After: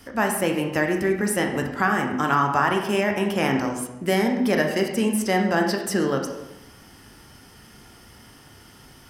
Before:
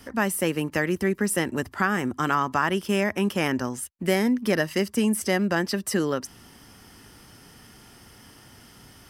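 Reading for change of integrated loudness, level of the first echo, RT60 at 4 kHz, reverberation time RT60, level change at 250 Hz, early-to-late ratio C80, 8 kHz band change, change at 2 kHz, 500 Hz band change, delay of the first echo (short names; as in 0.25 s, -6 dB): +2.5 dB, none, 0.75 s, 0.95 s, +1.5 dB, 8.0 dB, 0.0 dB, +2.5 dB, +3.0 dB, none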